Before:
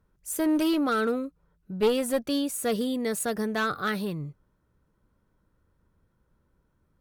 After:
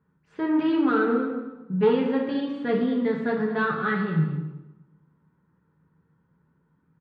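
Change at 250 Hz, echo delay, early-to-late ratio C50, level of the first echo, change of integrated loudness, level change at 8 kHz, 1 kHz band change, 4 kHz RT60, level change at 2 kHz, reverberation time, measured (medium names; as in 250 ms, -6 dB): +3.5 dB, 223 ms, 4.5 dB, -13.0 dB, +2.5 dB, under -40 dB, +2.5 dB, 0.85 s, +3.5 dB, 1.0 s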